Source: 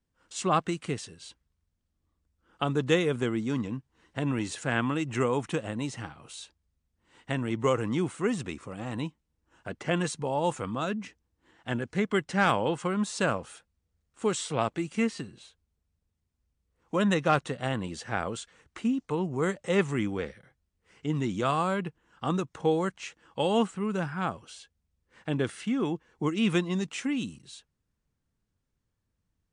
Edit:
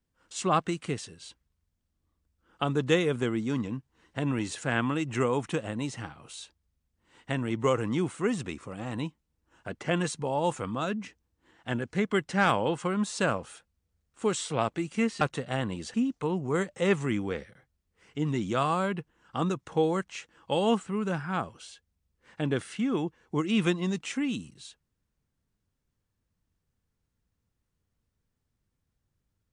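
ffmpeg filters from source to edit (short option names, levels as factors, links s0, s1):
-filter_complex "[0:a]asplit=3[s0][s1][s2];[s0]atrim=end=15.212[s3];[s1]atrim=start=17.328:end=18.062[s4];[s2]atrim=start=18.818[s5];[s3][s4]acrossfade=d=0.004:c1=hsin:c2=hsin[s6];[s6][s5]acrossfade=d=0.004:c1=hsin:c2=hsin"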